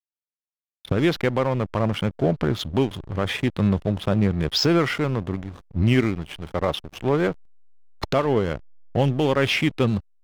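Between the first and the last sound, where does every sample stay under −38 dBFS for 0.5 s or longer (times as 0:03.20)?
0:07.33–0:08.02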